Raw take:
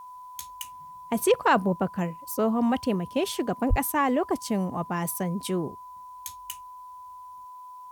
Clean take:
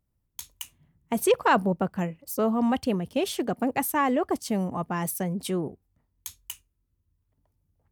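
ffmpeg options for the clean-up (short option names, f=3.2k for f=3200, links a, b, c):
-filter_complex "[0:a]bandreject=f=1k:w=30,asplit=3[a][b][c];[a]afade=t=out:st=3.69:d=0.02[d];[b]highpass=f=140:w=0.5412,highpass=f=140:w=1.3066,afade=t=in:st=3.69:d=0.02,afade=t=out:st=3.81:d=0.02[e];[c]afade=t=in:st=3.81:d=0.02[f];[d][e][f]amix=inputs=3:normalize=0,agate=range=-21dB:threshold=-36dB,asetnsamples=n=441:p=0,asendcmd='7.45 volume volume 10.5dB',volume=0dB"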